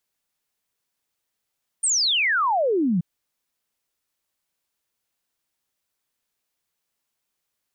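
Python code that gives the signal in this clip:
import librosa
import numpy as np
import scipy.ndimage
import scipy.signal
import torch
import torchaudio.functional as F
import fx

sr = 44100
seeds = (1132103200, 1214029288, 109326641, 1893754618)

y = fx.ess(sr, length_s=1.18, from_hz=9200.0, to_hz=160.0, level_db=-18.0)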